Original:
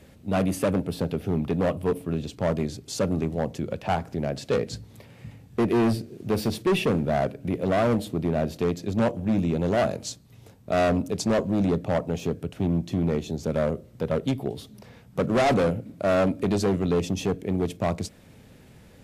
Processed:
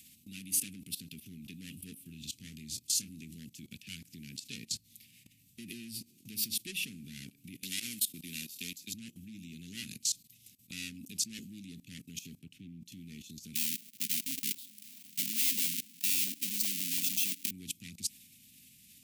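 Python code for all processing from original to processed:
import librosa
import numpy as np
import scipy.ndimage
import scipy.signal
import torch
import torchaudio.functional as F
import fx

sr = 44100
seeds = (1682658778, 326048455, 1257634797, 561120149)

y = fx.chain(x, sr, fx.low_shelf(hz=81.0, db=8.0),
    fx.doubler(ms=26.0, db=-8), at=(2.03, 3.15))
y = fx.chain(y, sr, fx.tilt_eq(slope=2.5),
    fx.comb_fb(f0_hz=92.0, decay_s=0.32, harmonics='all', damping=0.0, mix_pct=40),
    fx.band_squash(depth_pct=70), at=(7.63, 8.94))
y = fx.chain(y, sr, fx.lowpass(hz=2000.0, slope=6),
    fx.low_shelf(hz=76.0, db=-3.0), at=(12.39, 12.86))
y = fx.chain(y, sr, fx.halfwave_hold(),
    fx.highpass(hz=190.0, slope=24), at=(13.55, 17.51))
y = scipy.signal.sosfilt(scipy.signal.ellip(3, 1.0, 80, [250.0, 2500.0], 'bandstop', fs=sr, output='sos'), y)
y = fx.level_steps(y, sr, step_db=19)
y = fx.riaa(y, sr, side='recording')
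y = y * librosa.db_to_amplitude(-1.0)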